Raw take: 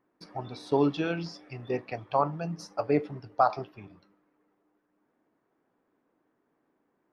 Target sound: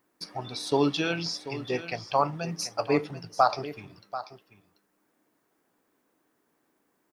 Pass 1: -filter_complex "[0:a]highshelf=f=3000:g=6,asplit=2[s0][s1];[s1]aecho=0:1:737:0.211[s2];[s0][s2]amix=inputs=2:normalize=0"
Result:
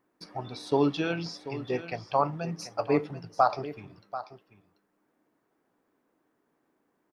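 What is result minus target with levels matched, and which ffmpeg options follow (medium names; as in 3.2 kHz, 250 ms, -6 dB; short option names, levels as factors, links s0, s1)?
8 kHz band -8.0 dB
-filter_complex "[0:a]highshelf=f=3000:g=17.5,asplit=2[s0][s1];[s1]aecho=0:1:737:0.211[s2];[s0][s2]amix=inputs=2:normalize=0"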